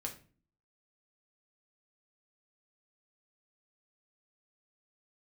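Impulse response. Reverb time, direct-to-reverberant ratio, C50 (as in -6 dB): 0.40 s, 1.0 dB, 11.0 dB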